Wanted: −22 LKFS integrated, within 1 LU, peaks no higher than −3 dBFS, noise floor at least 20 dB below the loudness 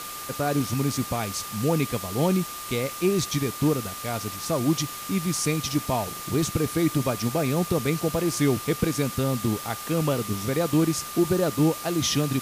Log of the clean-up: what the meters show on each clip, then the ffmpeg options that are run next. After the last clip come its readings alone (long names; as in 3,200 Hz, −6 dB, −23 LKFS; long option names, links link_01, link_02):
interfering tone 1,200 Hz; level of the tone −38 dBFS; background noise floor −36 dBFS; target noise floor −46 dBFS; integrated loudness −25.5 LKFS; sample peak −10.5 dBFS; target loudness −22.0 LKFS
→ -af "bandreject=frequency=1200:width=30"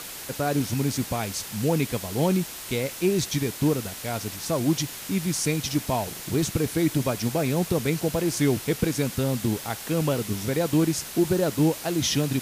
interfering tone none found; background noise floor −38 dBFS; target noise floor −46 dBFS
→ -af "afftdn=noise_reduction=8:noise_floor=-38"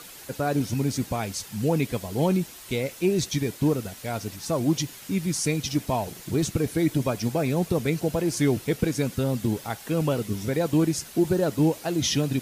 background noise floor −44 dBFS; target noise floor −46 dBFS
→ -af "afftdn=noise_reduction=6:noise_floor=-44"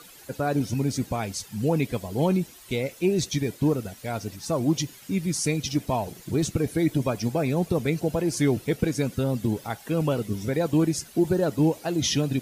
background noise floor −49 dBFS; integrated loudness −26.0 LKFS; sample peak −11.0 dBFS; target loudness −22.0 LKFS
→ -af "volume=4dB"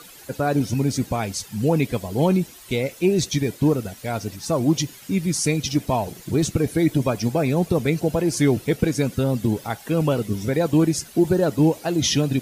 integrated loudness −22.0 LKFS; sample peak −7.0 dBFS; background noise floor −45 dBFS